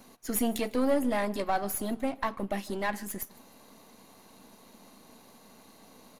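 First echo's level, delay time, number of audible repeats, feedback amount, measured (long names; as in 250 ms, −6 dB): −24.0 dB, 153 ms, 2, 43%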